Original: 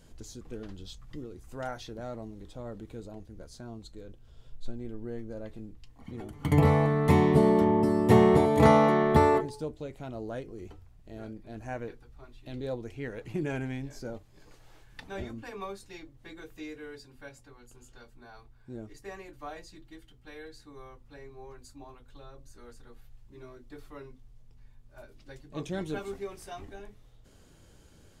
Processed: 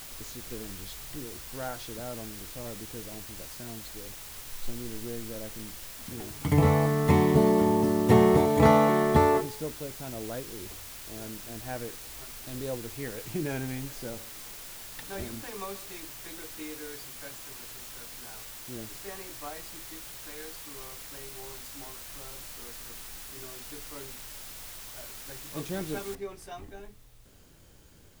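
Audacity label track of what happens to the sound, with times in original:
13.980000	16.940000	single-tap delay 130 ms −17 dB
20.350000	21.400000	linear-phase brick-wall low-pass 6,000 Hz
26.150000	26.150000	noise floor change −44 dB −64 dB

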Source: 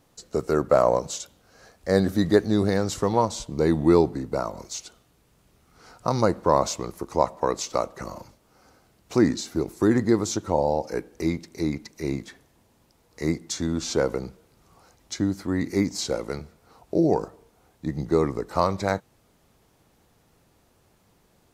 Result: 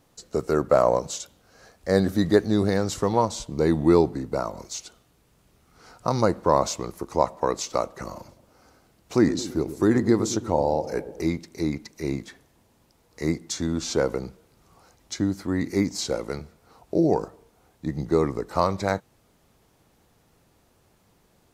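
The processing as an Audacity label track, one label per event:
8.140000	11.260000	delay with a low-pass on its return 112 ms, feedback 56%, low-pass 620 Hz, level −11 dB

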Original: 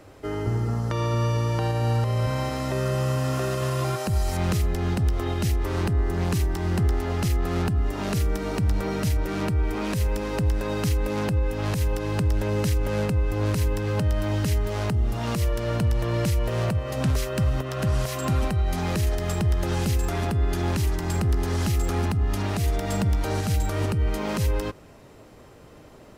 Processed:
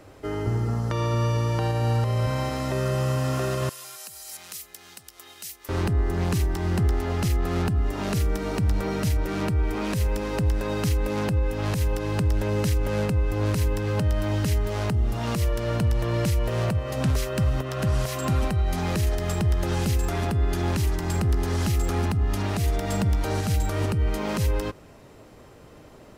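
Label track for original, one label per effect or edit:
3.690000	5.690000	first difference

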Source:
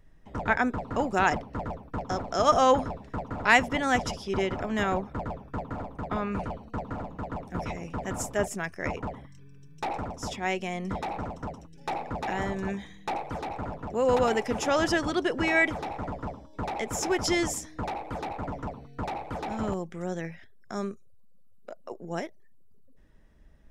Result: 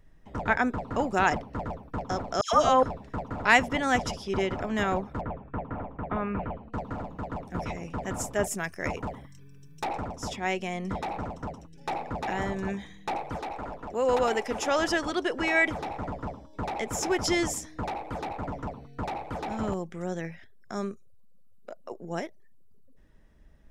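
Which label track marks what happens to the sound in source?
2.410000	2.830000	all-pass dispersion lows, late by 121 ms, half as late at 1,600 Hz
5.210000	6.730000	inverse Chebyshev low-pass filter stop band from 8,400 Hz, stop band 60 dB
8.440000	9.840000	high-shelf EQ 7,000 Hz +9.5 dB
13.380000	15.670000	parametric band 120 Hz −10 dB 1.7 octaves

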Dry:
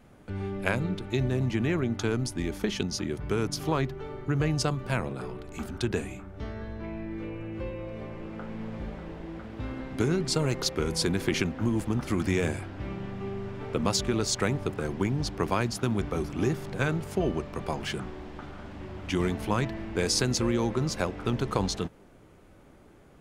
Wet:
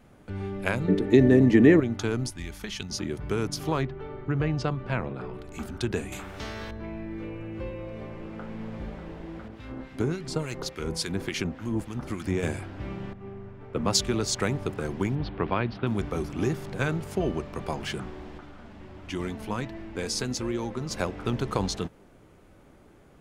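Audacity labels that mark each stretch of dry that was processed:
0.880000	1.800000	hollow resonant body resonances 290/430/1,800 Hz, height 16 dB, ringing for 30 ms
2.300000	2.900000	parametric band 350 Hz −12 dB 2.5 octaves
3.830000	5.340000	low-pass filter 3,200 Hz
6.120000	6.710000	every bin compressed towards the loudest bin 2 to 1
9.480000	12.430000	two-band tremolo in antiphase 3.5 Hz, crossover 1,400 Hz
13.130000	14.280000	multiband upward and downward expander depth 70%
15.150000	15.870000	inverse Chebyshev low-pass filter stop band from 6,900 Hz
18.380000	20.910000	flanger 1.4 Hz, delay 2.7 ms, depth 2.1 ms, regen +67%

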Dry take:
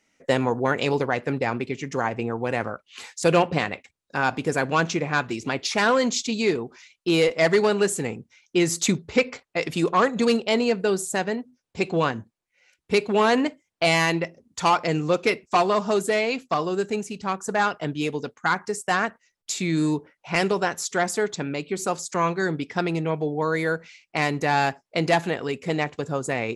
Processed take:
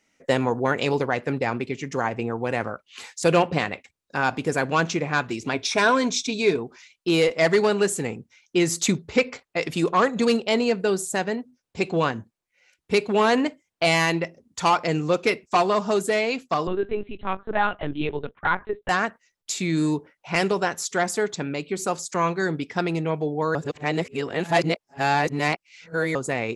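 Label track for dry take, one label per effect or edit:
5.530000	6.590000	EQ curve with evenly spaced ripples crests per octave 1.6, crest to trough 8 dB
16.670000	18.890000	linear-prediction vocoder at 8 kHz pitch kept
23.550000	26.150000	reverse

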